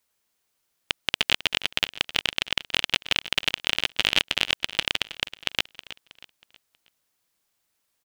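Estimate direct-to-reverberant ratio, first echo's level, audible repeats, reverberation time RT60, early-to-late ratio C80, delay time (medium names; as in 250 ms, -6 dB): no reverb, -15.0 dB, 3, no reverb, no reverb, 319 ms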